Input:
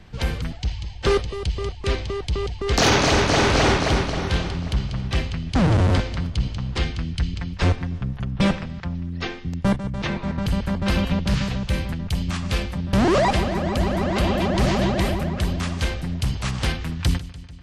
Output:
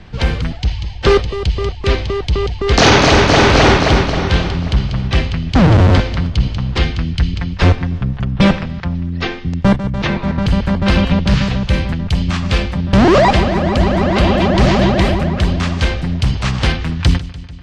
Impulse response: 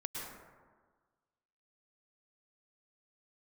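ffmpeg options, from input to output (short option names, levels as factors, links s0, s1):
-af "lowpass=5500,volume=2.66"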